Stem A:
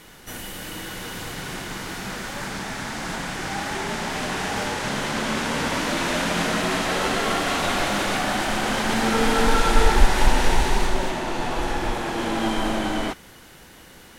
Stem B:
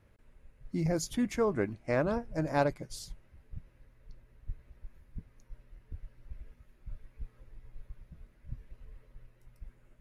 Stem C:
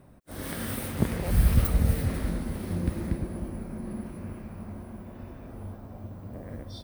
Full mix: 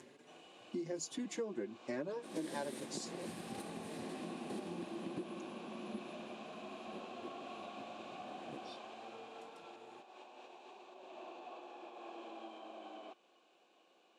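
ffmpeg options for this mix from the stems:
ffmpeg -i stem1.wav -i stem2.wav -i stem3.wav -filter_complex "[0:a]acompressor=threshold=-26dB:ratio=6,asplit=3[link_01][link_02][link_03];[link_01]bandpass=frequency=730:width_type=q:width=8,volume=0dB[link_04];[link_02]bandpass=frequency=1090:width_type=q:width=8,volume=-6dB[link_05];[link_03]bandpass=frequency=2440:width_type=q:width=8,volume=-9dB[link_06];[link_04][link_05][link_06]amix=inputs=3:normalize=0,volume=-5.5dB[link_07];[1:a]acompressor=mode=upward:threshold=-39dB:ratio=2.5,asplit=2[link_08][link_09];[link_09]adelay=5.2,afreqshift=1.1[link_10];[link_08][link_10]amix=inputs=2:normalize=1,volume=1dB,asplit=2[link_11][link_12];[2:a]alimiter=limit=-16dB:level=0:latency=1:release=192,adelay=1950,volume=-4dB[link_13];[link_12]apad=whole_len=387251[link_14];[link_13][link_14]sidechaingate=range=-7dB:threshold=-41dB:ratio=16:detection=peak[link_15];[link_07][link_11][link_15]amix=inputs=3:normalize=0,highpass=frequency=200:width=0.5412,highpass=frequency=200:width=1.3066,equalizer=frequency=350:width_type=q:width=4:gain=7,equalizer=frequency=730:width_type=q:width=4:gain=-8,equalizer=frequency=1300:width_type=q:width=4:gain=-10,equalizer=frequency=2300:width_type=q:width=4:gain=-4,equalizer=frequency=3900:width_type=q:width=4:gain=4,equalizer=frequency=7200:width_type=q:width=4:gain=6,lowpass=frequency=9500:width=0.5412,lowpass=frequency=9500:width=1.3066,acompressor=threshold=-38dB:ratio=5" out.wav

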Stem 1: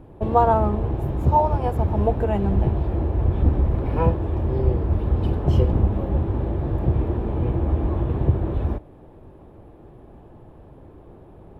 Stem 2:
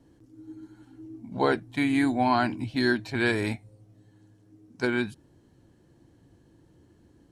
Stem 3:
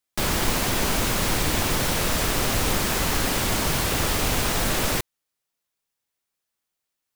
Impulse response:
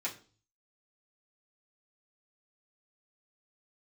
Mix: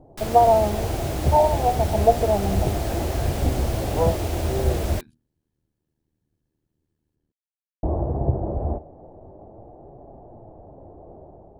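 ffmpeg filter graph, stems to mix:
-filter_complex "[0:a]dynaudnorm=framelen=140:gausssize=5:maxgain=5.5dB,flanger=delay=6.8:depth=8.3:regen=75:speed=0.3:shape=triangular,lowpass=frequency=700:width_type=q:width=3.8,volume=-3dB,asplit=3[link_01][link_02][link_03];[link_01]atrim=end=5,asetpts=PTS-STARTPTS,afade=type=out:start_time=4.996:duration=0.004:curve=hsin[link_04];[link_02]atrim=start=5:end=7.83,asetpts=PTS-STARTPTS,volume=0[link_05];[link_03]atrim=start=7.83,asetpts=PTS-STARTPTS,afade=type=in:duration=0.004:curve=hsin[link_06];[link_04][link_05][link_06]concat=n=3:v=0:a=1[link_07];[1:a]lowshelf=frequency=120:gain=11.5,bandreject=frequency=60:width_type=h:width=6,bandreject=frequency=120:width_type=h:width=6,bandreject=frequency=180:width_type=h:width=6,bandreject=frequency=240:width_type=h:width=6,tremolo=f=77:d=0.889,volume=-18.5dB[link_08];[2:a]volume=-11.5dB[link_09];[link_07][link_08][link_09]amix=inputs=3:normalize=0"

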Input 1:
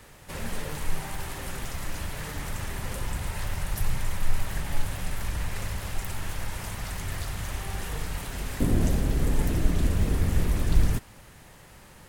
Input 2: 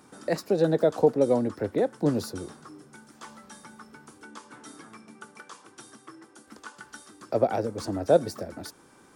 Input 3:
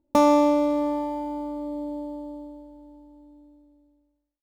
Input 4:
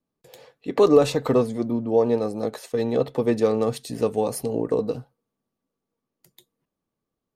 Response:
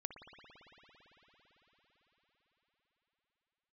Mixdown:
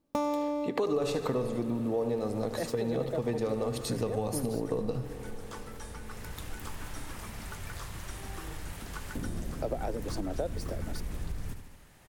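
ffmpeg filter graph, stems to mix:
-filter_complex "[0:a]acompressor=threshold=-23dB:ratio=2,adelay=550,volume=-8.5dB,afade=type=in:start_time=6.01:duration=0.41:silence=0.446684,asplit=2[link_01][link_02];[link_02]volume=-9.5dB[link_03];[1:a]adelay=2300,volume=-1.5dB[link_04];[2:a]volume=-5.5dB[link_05];[3:a]asubboost=boost=4.5:cutoff=140,volume=3dB,asplit=4[link_06][link_07][link_08][link_09];[link_07]volume=-11.5dB[link_10];[link_08]volume=-16.5dB[link_11];[link_09]apad=whole_len=195112[link_12];[link_05][link_12]sidechaincompress=threshold=-31dB:ratio=8:attack=16:release=1140[link_13];[link_04][link_06]amix=inputs=2:normalize=0,highpass=95,acompressor=threshold=-24dB:ratio=6,volume=0dB[link_14];[4:a]atrim=start_sample=2205[link_15];[link_10][link_15]afir=irnorm=-1:irlink=0[link_16];[link_03][link_11]amix=inputs=2:normalize=0,aecho=0:1:74|148|222|296|370|444|518|592:1|0.55|0.303|0.166|0.0915|0.0503|0.0277|0.0152[link_17];[link_01][link_13][link_14][link_16][link_17]amix=inputs=5:normalize=0,acompressor=threshold=-32dB:ratio=2"

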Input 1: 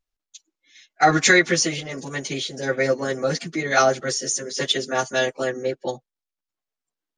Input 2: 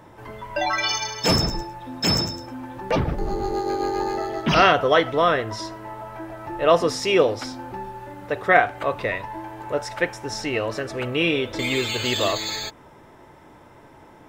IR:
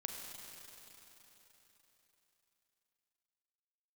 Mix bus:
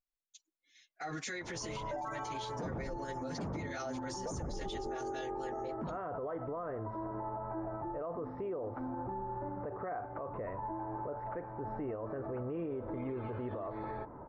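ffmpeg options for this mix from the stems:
-filter_complex "[0:a]volume=-14dB[link_01];[1:a]lowpass=frequency=1200:width=0.5412,lowpass=frequency=1200:width=1.3066,acompressor=threshold=-34dB:ratio=2,adelay=1350,volume=0dB[link_02];[link_01][link_02]amix=inputs=2:normalize=0,alimiter=level_in=8dB:limit=-24dB:level=0:latency=1:release=44,volume=-8dB"

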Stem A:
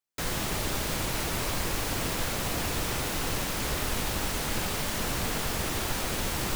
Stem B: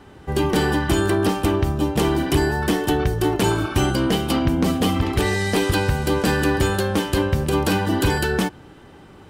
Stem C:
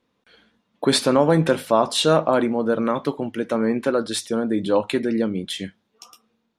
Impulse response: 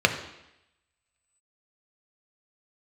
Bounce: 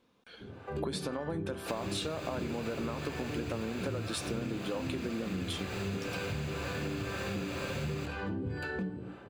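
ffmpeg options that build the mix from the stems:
-filter_complex "[0:a]adelay=1500,volume=-14dB,asplit=2[link_01][link_02];[link_02]volume=-3dB[link_03];[1:a]tiltshelf=frequency=1500:gain=5.5,alimiter=limit=-15.5dB:level=0:latency=1,acrossover=split=520[link_04][link_05];[link_04]aeval=exprs='val(0)*(1-1/2+1/2*cos(2*PI*2*n/s))':channel_layout=same[link_06];[link_05]aeval=exprs='val(0)*(1-1/2-1/2*cos(2*PI*2*n/s))':channel_layout=same[link_07];[link_06][link_07]amix=inputs=2:normalize=0,adelay=400,volume=-15dB,asplit=2[link_08][link_09];[link_09]volume=-3.5dB[link_10];[2:a]bandreject=frequency=1900:width=12,acompressor=threshold=-22dB:ratio=6,volume=1dB[link_11];[link_01][link_08]amix=inputs=2:normalize=0,acompressor=threshold=-49dB:ratio=6,volume=0dB[link_12];[3:a]atrim=start_sample=2205[link_13];[link_03][link_10]amix=inputs=2:normalize=0[link_14];[link_14][link_13]afir=irnorm=-1:irlink=0[link_15];[link_11][link_12][link_15]amix=inputs=3:normalize=0,acompressor=threshold=-33dB:ratio=6"

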